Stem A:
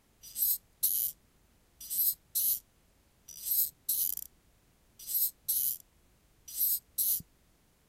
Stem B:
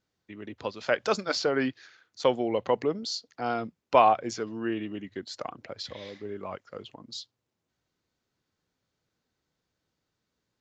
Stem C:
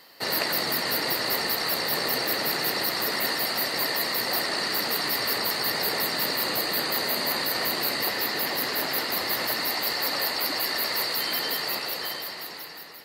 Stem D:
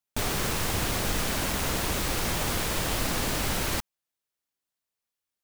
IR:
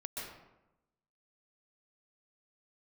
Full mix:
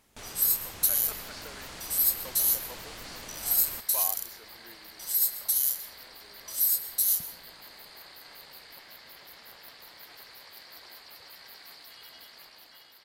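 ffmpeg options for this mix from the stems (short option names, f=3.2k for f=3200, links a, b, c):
-filter_complex "[0:a]volume=3dB,asplit=2[a][b];[b]volume=-8dB[c];[1:a]lowshelf=f=380:g=-11.5,volume=-16.5dB[d];[2:a]equalizer=f=3.3k:w=7.2:g=7.5,aeval=exprs='val(0)*sin(2*PI*200*n/s)':c=same,adelay=700,volume=-19dB[e];[3:a]lowpass=9.5k,volume=-13.5dB[f];[4:a]atrim=start_sample=2205[g];[c][g]afir=irnorm=-1:irlink=0[h];[a][d][e][f][h]amix=inputs=5:normalize=0,lowshelf=f=420:g=-6.5"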